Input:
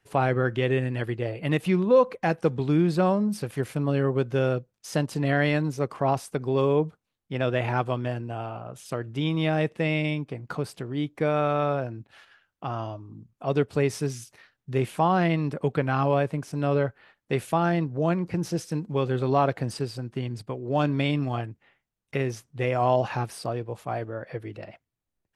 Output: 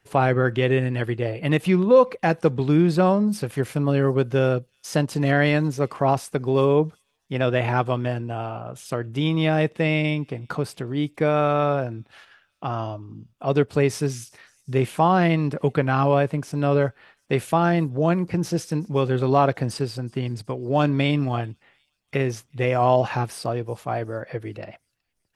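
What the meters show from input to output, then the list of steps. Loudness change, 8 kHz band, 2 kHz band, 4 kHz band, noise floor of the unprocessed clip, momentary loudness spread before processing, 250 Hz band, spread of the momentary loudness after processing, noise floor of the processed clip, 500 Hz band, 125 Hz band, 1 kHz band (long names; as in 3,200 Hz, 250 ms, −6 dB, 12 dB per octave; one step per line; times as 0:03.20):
+4.0 dB, +4.0 dB, +4.0 dB, +4.0 dB, −82 dBFS, 11 LU, +4.0 dB, 11 LU, −71 dBFS, +4.0 dB, +4.0 dB, +4.0 dB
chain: delay with a high-pass on its return 371 ms, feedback 53%, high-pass 5,000 Hz, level −22 dB
level +4 dB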